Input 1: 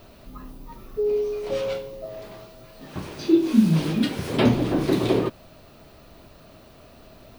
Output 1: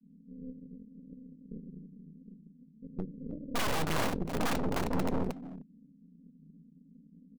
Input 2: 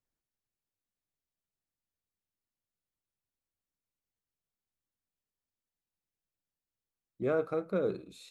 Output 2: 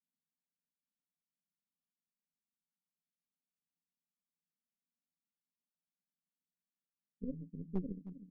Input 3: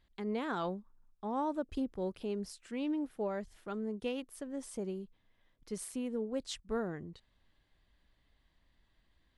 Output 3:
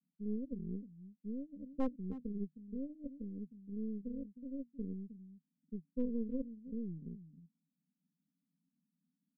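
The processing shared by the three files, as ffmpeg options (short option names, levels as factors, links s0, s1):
-af "asuperpass=centerf=210:order=20:qfactor=1.6,aemphasis=mode=reproduction:type=bsi,aeval=exprs='(mod(5.31*val(0)+1,2)-1)/5.31':c=same,flanger=delay=2.4:depth=1.9:regen=87:speed=0.73:shape=sinusoidal,aeval=exprs='clip(val(0),-1,0.0316)':c=same,aecho=1:1:312:0.282,aeval=exprs='0.158*(cos(1*acos(clip(val(0)/0.158,-1,1)))-cos(1*PI/2))+0.0501*(cos(2*acos(clip(val(0)/0.158,-1,1)))-cos(2*PI/2))+0.00631*(cos(3*acos(clip(val(0)/0.158,-1,1)))-cos(3*PI/2))+0.0355*(cos(6*acos(clip(val(0)/0.158,-1,1)))-cos(6*PI/2))':c=same"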